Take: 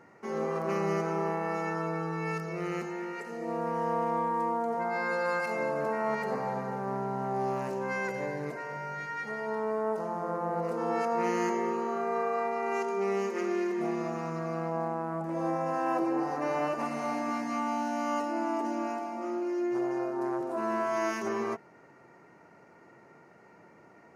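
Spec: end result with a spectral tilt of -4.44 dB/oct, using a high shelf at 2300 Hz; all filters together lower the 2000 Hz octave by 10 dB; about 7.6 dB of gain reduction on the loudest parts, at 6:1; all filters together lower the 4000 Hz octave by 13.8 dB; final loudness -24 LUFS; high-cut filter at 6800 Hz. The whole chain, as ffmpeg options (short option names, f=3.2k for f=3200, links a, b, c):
-af "lowpass=6.8k,equalizer=f=2k:t=o:g=-7.5,highshelf=f=2.3k:g=-8.5,equalizer=f=4k:t=o:g=-7.5,acompressor=threshold=-35dB:ratio=6,volume=15dB"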